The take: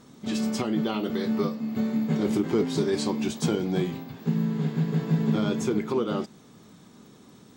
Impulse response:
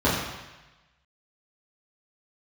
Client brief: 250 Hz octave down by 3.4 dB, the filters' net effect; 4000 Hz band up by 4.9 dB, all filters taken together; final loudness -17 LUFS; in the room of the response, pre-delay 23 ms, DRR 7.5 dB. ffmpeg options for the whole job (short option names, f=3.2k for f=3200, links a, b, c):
-filter_complex "[0:a]equalizer=f=250:t=o:g=-4.5,equalizer=f=4k:t=o:g=6,asplit=2[a][b];[1:a]atrim=start_sample=2205,adelay=23[c];[b][c]afir=irnorm=-1:irlink=0,volume=-25.5dB[d];[a][d]amix=inputs=2:normalize=0,volume=11dB"